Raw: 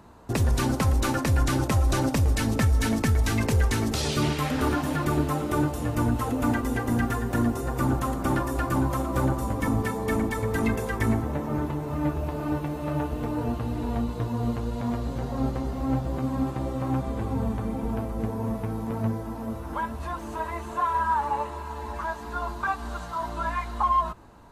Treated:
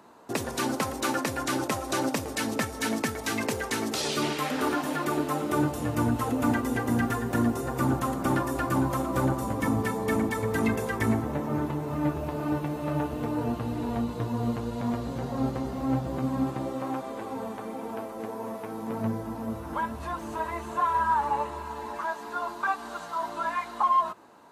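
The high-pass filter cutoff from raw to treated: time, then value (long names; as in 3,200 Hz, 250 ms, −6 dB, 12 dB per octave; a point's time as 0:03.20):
0:05.22 270 Hz
0:05.75 110 Hz
0:16.45 110 Hz
0:16.97 370 Hz
0:18.64 370 Hz
0:19.27 90 Hz
0:21.63 90 Hz
0:22.05 280 Hz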